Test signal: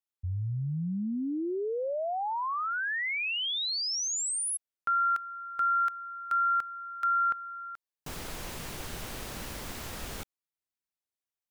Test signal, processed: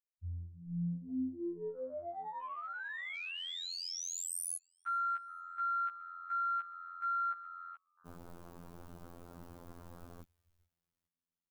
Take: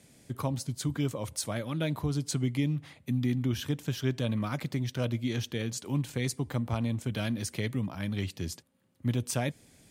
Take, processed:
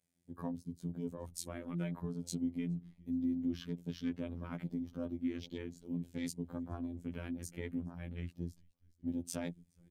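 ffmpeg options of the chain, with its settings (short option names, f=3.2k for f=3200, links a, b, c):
-filter_complex "[0:a]highshelf=f=11k:g=8.5,asplit=2[a][b];[b]asplit=3[c][d][e];[c]adelay=418,afreqshift=-82,volume=-20dB[f];[d]adelay=836,afreqshift=-164,volume=-27.3dB[g];[e]adelay=1254,afreqshift=-246,volume=-34.7dB[h];[f][g][h]amix=inputs=3:normalize=0[i];[a][i]amix=inputs=2:normalize=0,afwtdn=0.00891,afftfilt=real='hypot(re,im)*cos(PI*b)':imag='0':win_size=2048:overlap=0.75,adynamicequalizer=threshold=0.00355:dfrequency=220:dqfactor=0.96:tfrequency=220:tqfactor=0.96:attack=5:release=100:ratio=0.417:range=3.5:mode=boostabove:tftype=bell,volume=-8dB"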